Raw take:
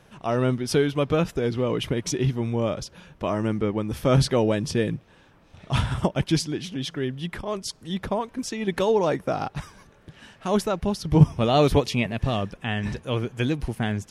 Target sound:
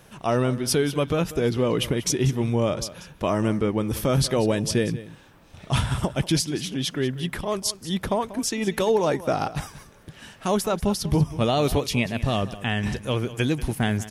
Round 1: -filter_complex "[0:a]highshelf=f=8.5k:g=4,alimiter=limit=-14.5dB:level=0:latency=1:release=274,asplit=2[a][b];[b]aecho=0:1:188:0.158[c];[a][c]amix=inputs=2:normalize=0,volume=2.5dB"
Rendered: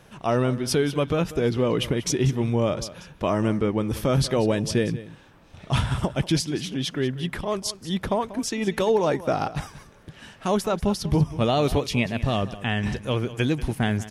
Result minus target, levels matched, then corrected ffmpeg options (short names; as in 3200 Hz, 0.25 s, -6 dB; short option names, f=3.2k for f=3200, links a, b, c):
8000 Hz band -3.5 dB
-filter_complex "[0:a]highshelf=f=8.5k:g=13.5,alimiter=limit=-14.5dB:level=0:latency=1:release=274,asplit=2[a][b];[b]aecho=0:1:188:0.158[c];[a][c]amix=inputs=2:normalize=0,volume=2.5dB"